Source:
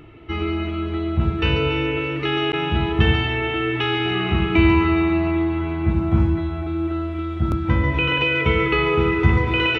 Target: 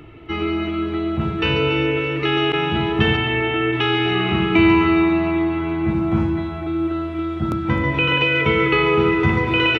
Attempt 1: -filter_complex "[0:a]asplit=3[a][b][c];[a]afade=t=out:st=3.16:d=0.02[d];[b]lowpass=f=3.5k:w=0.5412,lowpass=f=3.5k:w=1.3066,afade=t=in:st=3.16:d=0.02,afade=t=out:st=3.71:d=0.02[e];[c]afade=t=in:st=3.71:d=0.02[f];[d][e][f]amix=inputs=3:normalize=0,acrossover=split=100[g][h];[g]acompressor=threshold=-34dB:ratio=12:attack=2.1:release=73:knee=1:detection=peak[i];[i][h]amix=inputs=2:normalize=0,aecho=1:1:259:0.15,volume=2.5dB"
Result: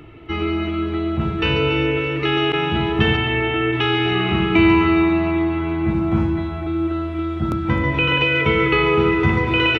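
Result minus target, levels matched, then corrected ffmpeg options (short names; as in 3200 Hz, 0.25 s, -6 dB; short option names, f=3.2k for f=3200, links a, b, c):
compressor: peak gain reduction -8.5 dB
-filter_complex "[0:a]asplit=3[a][b][c];[a]afade=t=out:st=3.16:d=0.02[d];[b]lowpass=f=3.5k:w=0.5412,lowpass=f=3.5k:w=1.3066,afade=t=in:st=3.16:d=0.02,afade=t=out:st=3.71:d=0.02[e];[c]afade=t=in:st=3.71:d=0.02[f];[d][e][f]amix=inputs=3:normalize=0,acrossover=split=100[g][h];[g]acompressor=threshold=-43.5dB:ratio=12:attack=2.1:release=73:knee=1:detection=peak[i];[i][h]amix=inputs=2:normalize=0,aecho=1:1:259:0.15,volume=2.5dB"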